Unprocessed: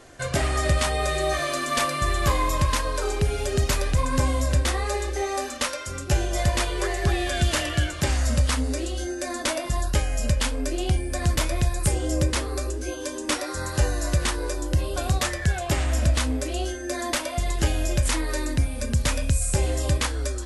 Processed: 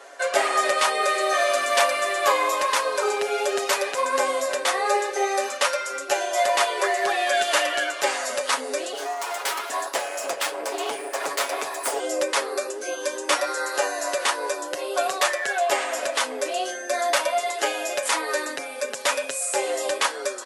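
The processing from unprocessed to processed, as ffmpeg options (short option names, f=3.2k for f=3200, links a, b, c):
-filter_complex "[0:a]asettb=1/sr,asplit=3[a][b][c];[a]atrim=end=8.934[d];[b]atrim=start=8.93:end=12,asetpts=PTS-STARTPTS,afade=t=in:d=0.004:c=qsin,afade=t=out:st=3.066:d=0.004:c=qsin,aeval=exprs='abs(val(0))':c=same[e];[c]atrim=start=11.996[f];[d][e]acrossfade=d=0.004:c1=hsin:c2=qsin[g];[g][f]acrossfade=d=0.004:c1=qsin:c2=hsin,highpass=f=440:w=0.5412,highpass=f=440:w=1.3066,equalizer=f=840:w=0.44:g=6.5,aecho=1:1:7.2:0.6"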